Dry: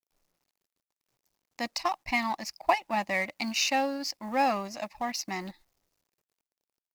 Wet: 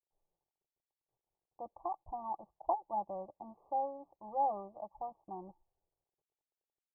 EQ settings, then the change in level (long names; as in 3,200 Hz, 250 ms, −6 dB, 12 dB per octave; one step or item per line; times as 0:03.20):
Chebyshev low-pass with heavy ripple 1,200 Hz, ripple 6 dB
high-frequency loss of the air 460 metres
phaser with its sweep stopped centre 610 Hz, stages 4
−1.0 dB